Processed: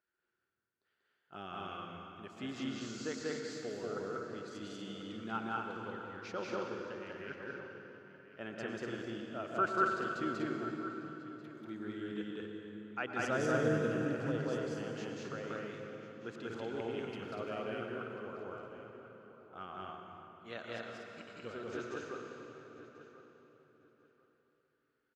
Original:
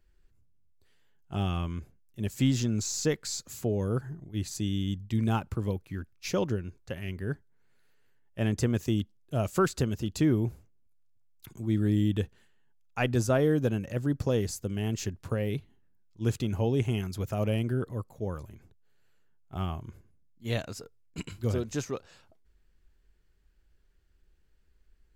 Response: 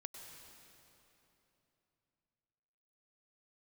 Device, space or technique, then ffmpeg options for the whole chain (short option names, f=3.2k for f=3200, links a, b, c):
station announcement: -filter_complex "[0:a]asettb=1/sr,asplit=3[a][b][c];[a]atrim=end=13.194[d];[b]atrim=start=13.19:end=14.2,asetpts=PTS-STARTPTS,afade=t=in:d=0.004:c=qsin,afade=t=out:st=1.006:d=0.004:c=qsin,bass=f=250:g=12,treble=f=4k:g=10[e];[c]atrim=start=14.196[f];[d][e]acrossfade=d=0.004:c1=hsin:c2=qsin[g];[g][f]acrossfade=d=0.004:c1=qsin:c2=hsin,highpass=310,lowpass=4k,equalizer=f=1.4k:t=o:w=0.41:g=12,aecho=1:1:189.5|242:1|0.631[h];[1:a]atrim=start_sample=2205[i];[h][i]afir=irnorm=-1:irlink=0,asplit=2[j][k];[k]adelay=1041,lowpass=f=3.5k:p=1,volume=-14dB,asplit=2[l][m];[m]adelay=1041,lowpass=f=3.5k:p=1,volume=0.22[n];[j][l][n]amix=inputs=3:normalize=0,volume=-6dB"